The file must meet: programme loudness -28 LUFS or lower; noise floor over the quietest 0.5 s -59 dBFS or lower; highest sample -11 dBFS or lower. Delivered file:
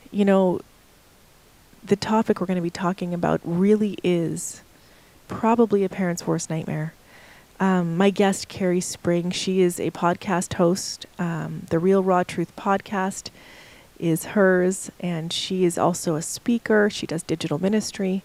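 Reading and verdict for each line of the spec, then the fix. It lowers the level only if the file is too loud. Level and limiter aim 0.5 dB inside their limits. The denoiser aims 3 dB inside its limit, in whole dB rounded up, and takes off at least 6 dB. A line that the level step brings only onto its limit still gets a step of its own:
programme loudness -23.0 LUFS: fail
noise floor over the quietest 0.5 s -54 dBFS: fail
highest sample -6.0 dBFS: fail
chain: gain -5.5 dB

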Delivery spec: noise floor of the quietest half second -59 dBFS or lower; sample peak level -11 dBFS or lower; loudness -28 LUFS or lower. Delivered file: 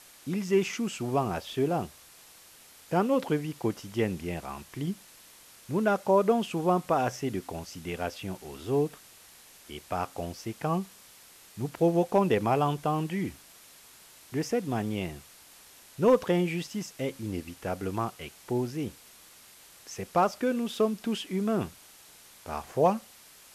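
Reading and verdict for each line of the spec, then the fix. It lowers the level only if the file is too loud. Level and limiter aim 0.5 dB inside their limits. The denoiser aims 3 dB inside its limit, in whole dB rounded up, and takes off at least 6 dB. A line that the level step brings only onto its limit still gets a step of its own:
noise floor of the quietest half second -54 dBFS: fail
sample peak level -13.0 dBFS: OK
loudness -29.5 LUFS: OK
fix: denoiser 8 dB, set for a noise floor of -54 dBFS

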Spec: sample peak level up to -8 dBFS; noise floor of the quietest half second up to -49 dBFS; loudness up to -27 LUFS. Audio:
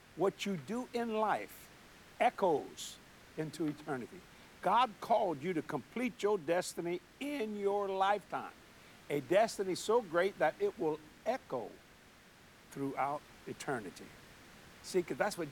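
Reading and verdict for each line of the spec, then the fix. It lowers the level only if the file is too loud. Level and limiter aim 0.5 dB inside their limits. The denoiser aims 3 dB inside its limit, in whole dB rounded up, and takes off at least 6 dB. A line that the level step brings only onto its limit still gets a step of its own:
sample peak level -19.0 dBFS: OK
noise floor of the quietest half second -60 dBFS: OK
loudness -36.0 LUFS: OK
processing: none

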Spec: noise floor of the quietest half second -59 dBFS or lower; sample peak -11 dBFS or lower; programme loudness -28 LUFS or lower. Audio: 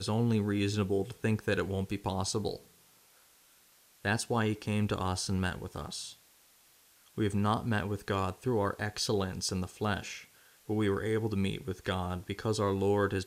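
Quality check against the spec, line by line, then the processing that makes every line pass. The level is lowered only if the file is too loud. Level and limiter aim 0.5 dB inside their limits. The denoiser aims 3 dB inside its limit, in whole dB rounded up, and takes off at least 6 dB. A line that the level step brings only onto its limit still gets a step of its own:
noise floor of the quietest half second -63 dBFS: OK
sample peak -15.5 dBFS: OK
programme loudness -32.5 LUFS: OK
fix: none

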